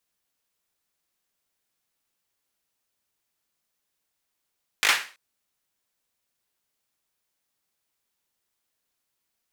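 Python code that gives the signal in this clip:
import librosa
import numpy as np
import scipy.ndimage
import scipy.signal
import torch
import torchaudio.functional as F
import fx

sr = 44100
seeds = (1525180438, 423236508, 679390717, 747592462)

y = fx.drum_clap(sr, seeds[0], length_s=0.33, bursts=4, spacing_ms=19, hz=1900.0, decay_s=0.36)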